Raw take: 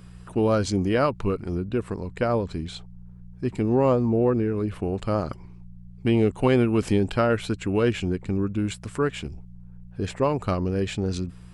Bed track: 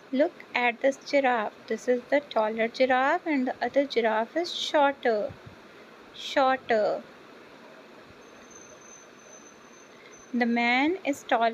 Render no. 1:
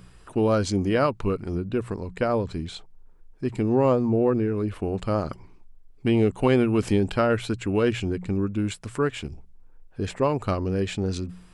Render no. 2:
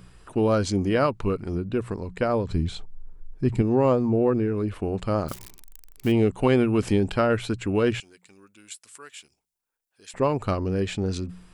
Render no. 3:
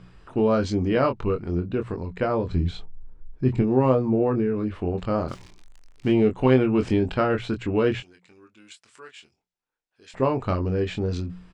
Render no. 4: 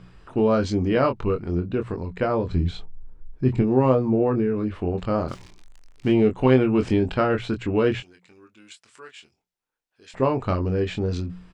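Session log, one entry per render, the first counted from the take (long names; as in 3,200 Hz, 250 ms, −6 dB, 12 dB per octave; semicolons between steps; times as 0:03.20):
hum removal 60 Hz, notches 3
0:02.49–0:03.62: low-shelf EQ 180 Hz +11.5 dB; 0:05.28–0:06.12: spike at every zero crossing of −27.5 dBFS; 0:08.00–0:10.14: first difference
high-frequency loss of the air 120 metres; double-tracking delay 23 ms −6 dB
level +1 dB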